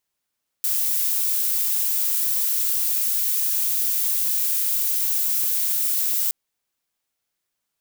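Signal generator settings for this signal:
noise violet, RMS −22 dBFS 5.67 s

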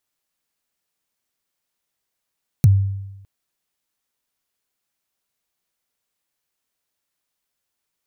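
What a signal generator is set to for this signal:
synth kick length 0.61 s, from 160 Hz, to 98 Hz, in 28 ms, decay 0.99 s, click on, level −6 dB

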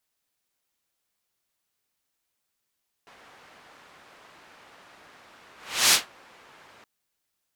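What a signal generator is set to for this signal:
pass-by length 3.77 s, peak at 0:02.85, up 0.38 s, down 0.17 s, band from 1,300 Hz, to 5,400 Hz, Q 0.71, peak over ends 36 dB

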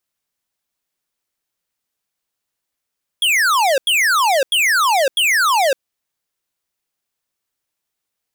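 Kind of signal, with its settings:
repeated falling chirps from 3,400 Hz, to 510 Hz, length 0.56 s square, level −14.5 dB, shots 4, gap 0.09 s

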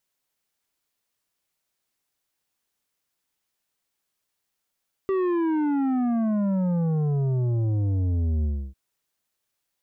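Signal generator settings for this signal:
bass drop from 390 Hz, over 3.65 s, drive 9 dB, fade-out 0.30 s, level −22 dB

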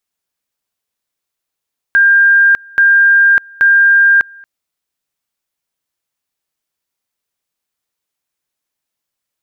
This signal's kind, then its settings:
tone at two levels in turn 1,600 Hz −5 dBFS, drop 28.5 dB, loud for 0.60 s, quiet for 0.23 s, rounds 3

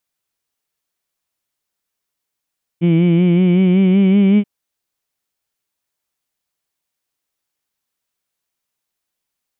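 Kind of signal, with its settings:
vowel by formant synthesis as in heed, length 1.63 s, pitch 166 Hz, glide +3.5 semitones, vibrato depth 0.65 semitones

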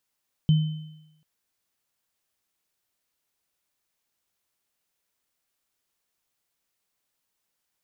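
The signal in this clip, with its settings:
inharmonic partials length 0.74 s, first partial 155 Hz, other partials 3,060 Hz, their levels −19.5 dB, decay 0.88 s, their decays 1.00 s, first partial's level −13.5 dB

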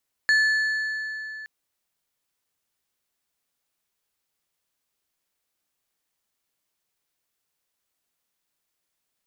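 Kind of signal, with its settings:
struck metal plate, length 1.17 s, lowest mode 1,740 Hz, decay 3.47 s, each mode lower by 11 dB, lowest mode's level −15.5 dB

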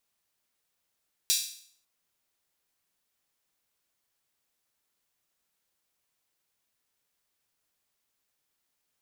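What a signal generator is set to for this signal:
open synth hi-hat length 0.55 s, high-pass 4,100 Hz, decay 0.57 s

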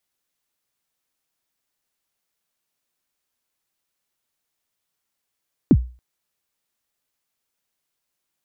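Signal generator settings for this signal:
synth kick length 0.28 s, from 340 Hz, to 61 Hz, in 55 ms, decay 0.35 s, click off, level −5.5 dB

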